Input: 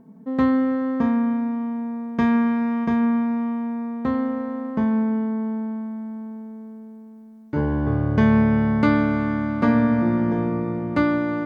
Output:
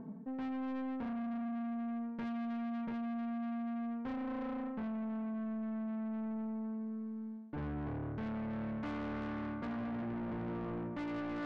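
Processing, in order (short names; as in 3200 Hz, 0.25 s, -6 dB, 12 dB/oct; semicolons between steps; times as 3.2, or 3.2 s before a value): LPF 2100 Hz; reverse; compressor 10:1, threshold -32 dBFS, peak gain reduction 19 dB; reverse; soft clip -40 dBFS, distortion -9 dB; gain +3 dB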